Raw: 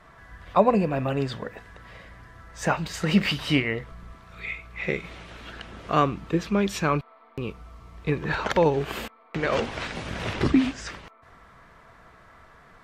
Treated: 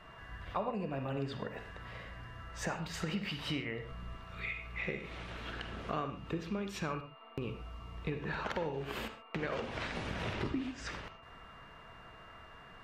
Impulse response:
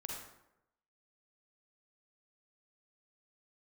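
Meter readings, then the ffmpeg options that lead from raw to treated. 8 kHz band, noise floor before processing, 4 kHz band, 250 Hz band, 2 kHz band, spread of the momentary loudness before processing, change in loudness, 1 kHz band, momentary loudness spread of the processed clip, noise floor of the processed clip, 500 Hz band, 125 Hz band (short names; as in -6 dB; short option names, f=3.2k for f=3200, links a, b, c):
-10.5 dB, -54 dBFS, -10.5 dB, -14.0 dB, -10.0 dB, 19 LU, -13.5 dB, -13.0 dB, 16 LU, -54 dBFS, -14.0 dB, -11.5 dB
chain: -filter_complex "[0:a]acompressor=threshold=-33dB:ratio=5,aeval=exprs='val(0)+0.00112*sin(2*PI*2800*n/s)':c=same,asplit=2[a][b];[1:a]atrim=start_sample=2205,atrim=end_sample=6615,lowpass=5.5k[c];[b][c]afir=irnorm=-1:irlink=0,volume=-0.5dB[d];[a][d]amix=inputs=2:normalize=0,volume=-6dB"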